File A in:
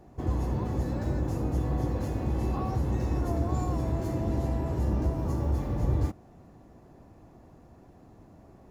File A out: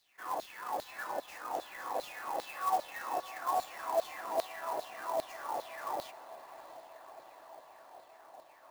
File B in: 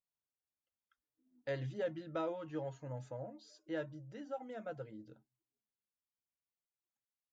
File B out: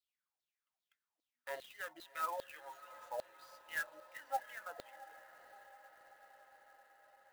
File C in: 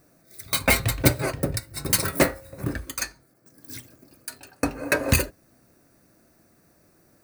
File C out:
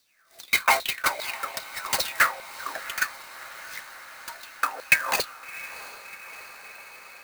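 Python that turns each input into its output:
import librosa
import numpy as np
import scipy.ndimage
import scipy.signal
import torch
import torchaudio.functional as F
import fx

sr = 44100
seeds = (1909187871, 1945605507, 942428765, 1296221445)

y = scipy.signal.sosfilt(scipy.signal.butter(2, 160.0, 'highpass', fs=sr, output='sos'), x)
y = fx.filter_lfo_highpass(y, sr, shape='saw_down', hz=2.5, low_hz=600.0, high_hz=4300.0, q=7.0)
y = scipy.signal.sosfilt(scipy.signal.butter(2, 12000.0, 'lowpass', fs=sr, output='sos'), y)
y = fx.echo_diffused(y, sr, ms=696, feedback_pct=71, wet_db=-15.5)
y = fx.clock_jitter(y, sr, seeds[0], jitter_ms=0.023)
y = y * 10.0 ** (-2.5 / 20.0)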